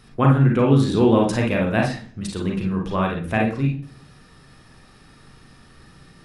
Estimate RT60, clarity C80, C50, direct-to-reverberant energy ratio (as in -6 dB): 0.55 s, 12.5 dB, 4.0 dB, -1.0 dB